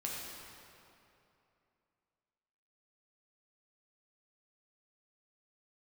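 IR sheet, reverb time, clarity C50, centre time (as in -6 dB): 2.8 s, -1.0 dB, 0.137 s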